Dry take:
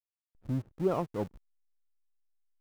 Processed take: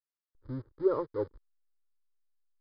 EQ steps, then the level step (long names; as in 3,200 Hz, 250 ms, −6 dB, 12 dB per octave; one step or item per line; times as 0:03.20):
dynamic equaliser 470 Hz, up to +6 dB, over −42 dBFS, Q 2.2
linear-phase brick-wall low-pass 5,100 Hz
phaser with its sweep stopped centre 710 Hz, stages 6
0.0 dB